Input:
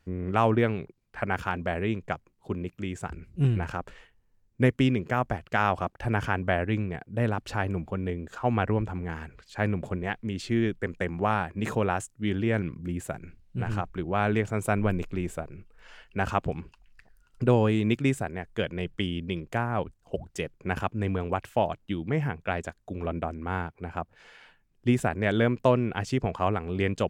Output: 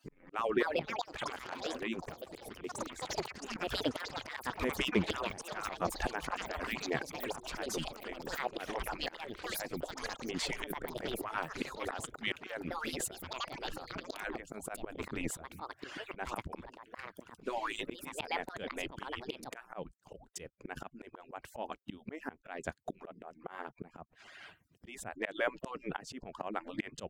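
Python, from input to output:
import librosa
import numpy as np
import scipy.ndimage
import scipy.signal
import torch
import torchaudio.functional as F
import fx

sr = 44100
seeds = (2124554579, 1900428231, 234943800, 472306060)

y = fx.hpss_only(x, sr, part='percussive')
y = fx.auto_swell(y, sr, attack_ms=766.0)
y = fx.echo_pitch(y, sr, ms=352, semitones=6, count=3, db_per_echo=-3.0)
y = fx.band_squash(y, sr, depth_pct=70, at=(10.7, 11.74))
y = y * 10.0 ** (9.5 / 20.0)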